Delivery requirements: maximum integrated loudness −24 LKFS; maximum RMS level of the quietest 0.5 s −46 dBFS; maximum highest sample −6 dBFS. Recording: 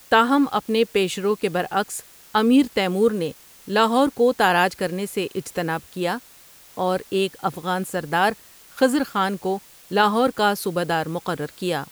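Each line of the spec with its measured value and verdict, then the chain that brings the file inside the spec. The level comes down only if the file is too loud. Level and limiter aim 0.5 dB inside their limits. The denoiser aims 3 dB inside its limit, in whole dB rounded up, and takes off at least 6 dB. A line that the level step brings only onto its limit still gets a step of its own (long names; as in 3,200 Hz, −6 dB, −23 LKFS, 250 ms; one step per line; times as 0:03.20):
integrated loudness −22.0 LKFS: out of spec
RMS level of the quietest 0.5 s −49 dBFS: in spec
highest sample −5.5 dBFS: out of spec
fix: level −2.5 dB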